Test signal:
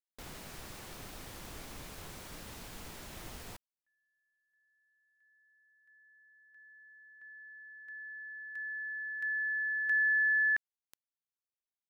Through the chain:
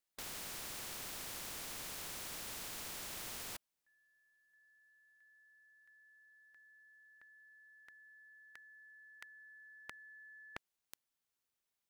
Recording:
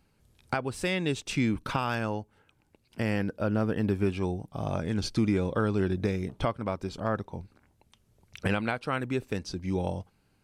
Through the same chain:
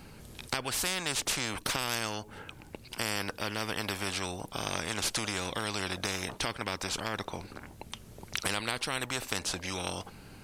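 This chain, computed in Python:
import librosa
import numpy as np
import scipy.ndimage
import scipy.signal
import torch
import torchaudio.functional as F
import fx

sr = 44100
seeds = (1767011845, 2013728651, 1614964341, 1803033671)

y = fx.spectral_comp(x, sr, ratio=4.0)
y = y * 10.0 ** (3.0 / 20.0)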